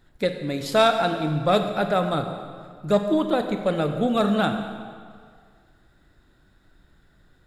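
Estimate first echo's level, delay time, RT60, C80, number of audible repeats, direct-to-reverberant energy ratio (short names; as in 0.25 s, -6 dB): none, none, 2.0 s, 8.0 dB, none, 6.0 dB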